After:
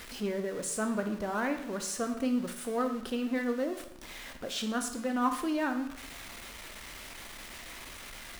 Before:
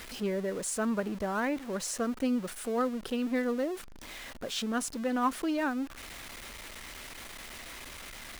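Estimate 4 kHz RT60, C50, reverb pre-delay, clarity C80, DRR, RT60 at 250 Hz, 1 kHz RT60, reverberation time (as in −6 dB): 0.65 s, 9.0 dB, 12 ms, 11.5 dB, 5.5 dB, 0.70 s, 0.75 s, 0.70 s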